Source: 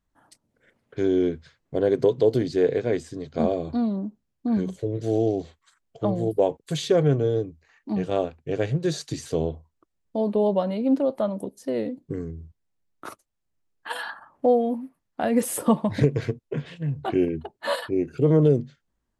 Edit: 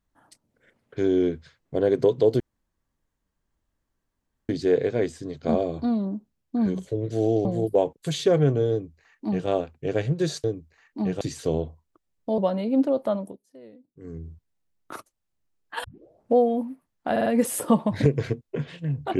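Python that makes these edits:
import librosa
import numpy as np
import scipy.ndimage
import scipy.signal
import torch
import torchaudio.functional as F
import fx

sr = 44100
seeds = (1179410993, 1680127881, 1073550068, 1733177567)

y = fx.edit(x, sr, fx.insert_room_tone(at_s=2.4, length_s=2.09),
    fx.cut(start_s=5.36, length_s=0.73),
    fx.duplicate(start_s=7.35, length_s=0.77, to_s=9.08),
    fx.cut(start_s=10.25, length_s=0.26),
    fx.fade_down_up(start_s=11.29, length_s=1.06, db=-20.0, fade_s=0.23),
    fx.tape_start(start_s=13.97, length_s=0.52),
    fx.stutter(start_s=15.24, slice_s=0.05, count=4), tone=tone)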